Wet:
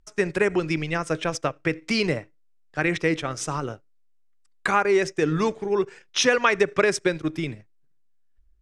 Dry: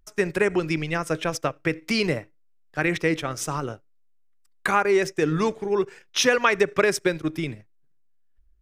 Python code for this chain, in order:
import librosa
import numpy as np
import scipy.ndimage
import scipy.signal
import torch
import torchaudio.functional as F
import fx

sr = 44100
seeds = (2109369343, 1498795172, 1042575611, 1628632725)

y = scipy.signal.sosfilt(scipy.signal.butter(4, 9200.0, 'lowpass', fs=sr, output='sos'), x)